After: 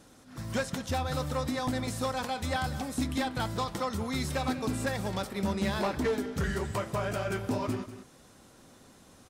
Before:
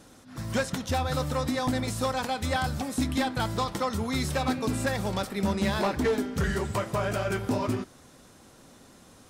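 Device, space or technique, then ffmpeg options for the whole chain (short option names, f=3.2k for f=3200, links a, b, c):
ducked delay: -filter_complex "[0:a]asplit=3[a][b][c];[b]adelay=192,volume=-7dB[d];[c]apad=whole_len=418313[e];[d][e]sidechaincompress=threshold=-36dB:ratio=4:attack=16:release=453[f];[a][f]amix=inputs=2:normalize=0,volume=-3.5dB"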